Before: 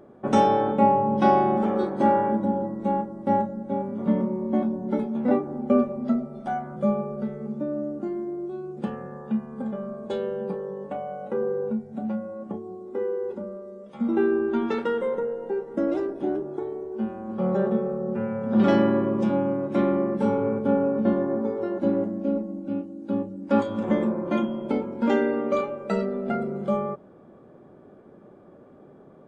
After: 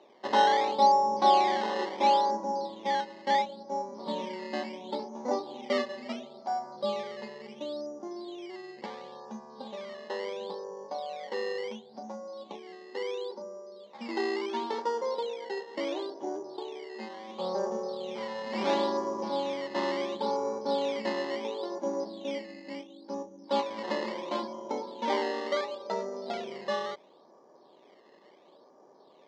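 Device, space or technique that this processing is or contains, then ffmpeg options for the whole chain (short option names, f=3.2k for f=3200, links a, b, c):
circuit-bent sampling toy: -af "acrusher=samples=13:mix=1:aa=0.000001:lfo=1:lforange=13:lforate=0.72,highpass=480,equalizer=f=960:t=q:w=4:g=10,equalizer=f=1.4k:t=q:w=4:g=-9,equalizer=f=2.6k:t=q:w=4:g=-8,lowpass=f=4.7k:w=0.5412,lowpass=f=4.7k:w=1.3066,volume=-3.5dB"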